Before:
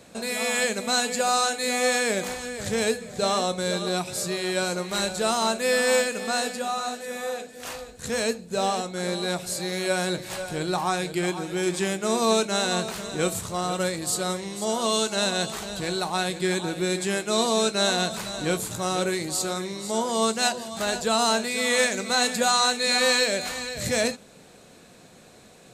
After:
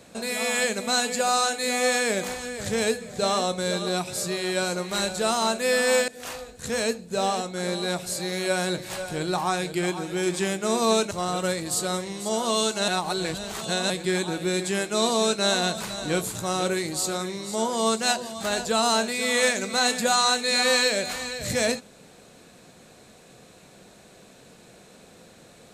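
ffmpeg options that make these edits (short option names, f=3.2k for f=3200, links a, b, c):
-filter_complex "[0:a]asplit=5[a][b][c][d][e];[a]atrim=end=6.082[f];[b]atrim=start=7.478:end=12.512[g];[c]atrim=start=13.468:end=15.242[h];[d]atrim=start=15.238:end=16.262,asetpts=PTS-STARTPTS,areverse[i];[e]atrim=start=16.258[j];[f][g]acrossfade=d=0.004:c1=hsin:c2=hsin[k];[k][h]acrossfade=d=0.004:c1=hsin:c2=hsin[l];[l][i]acrossfade=d=0.004:c1=hsin:c2=hsin[m];[m][j]acrossfade=d=0.004:c1=hsin:c2=hsin"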